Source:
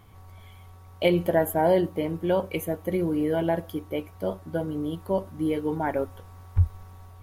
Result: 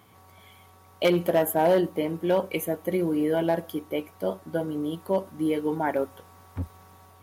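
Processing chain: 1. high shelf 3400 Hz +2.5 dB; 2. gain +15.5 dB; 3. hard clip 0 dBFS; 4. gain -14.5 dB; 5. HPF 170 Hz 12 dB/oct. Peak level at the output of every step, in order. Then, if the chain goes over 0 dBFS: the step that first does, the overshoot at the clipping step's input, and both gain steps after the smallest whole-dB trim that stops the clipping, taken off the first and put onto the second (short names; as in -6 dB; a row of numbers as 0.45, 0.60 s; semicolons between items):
-9.0, +6.5, 0.0, -14.5, -10.5 dBFS; step 2, 6.5 dB; step 2 +8.5 dB, step 4 -7.5 dB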